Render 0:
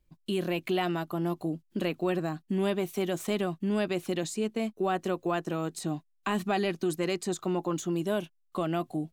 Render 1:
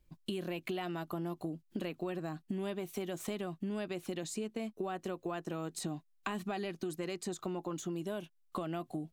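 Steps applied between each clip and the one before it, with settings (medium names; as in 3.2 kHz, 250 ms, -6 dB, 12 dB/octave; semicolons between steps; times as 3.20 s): compression 6:1, threshold -37 dBFS, peak gain reduction 12 dB; trim +1.5 dB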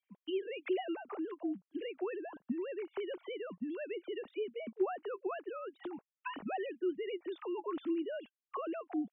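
formants replaced by sine waves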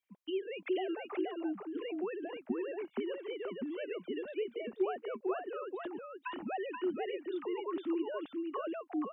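delay 479 ms -4 dB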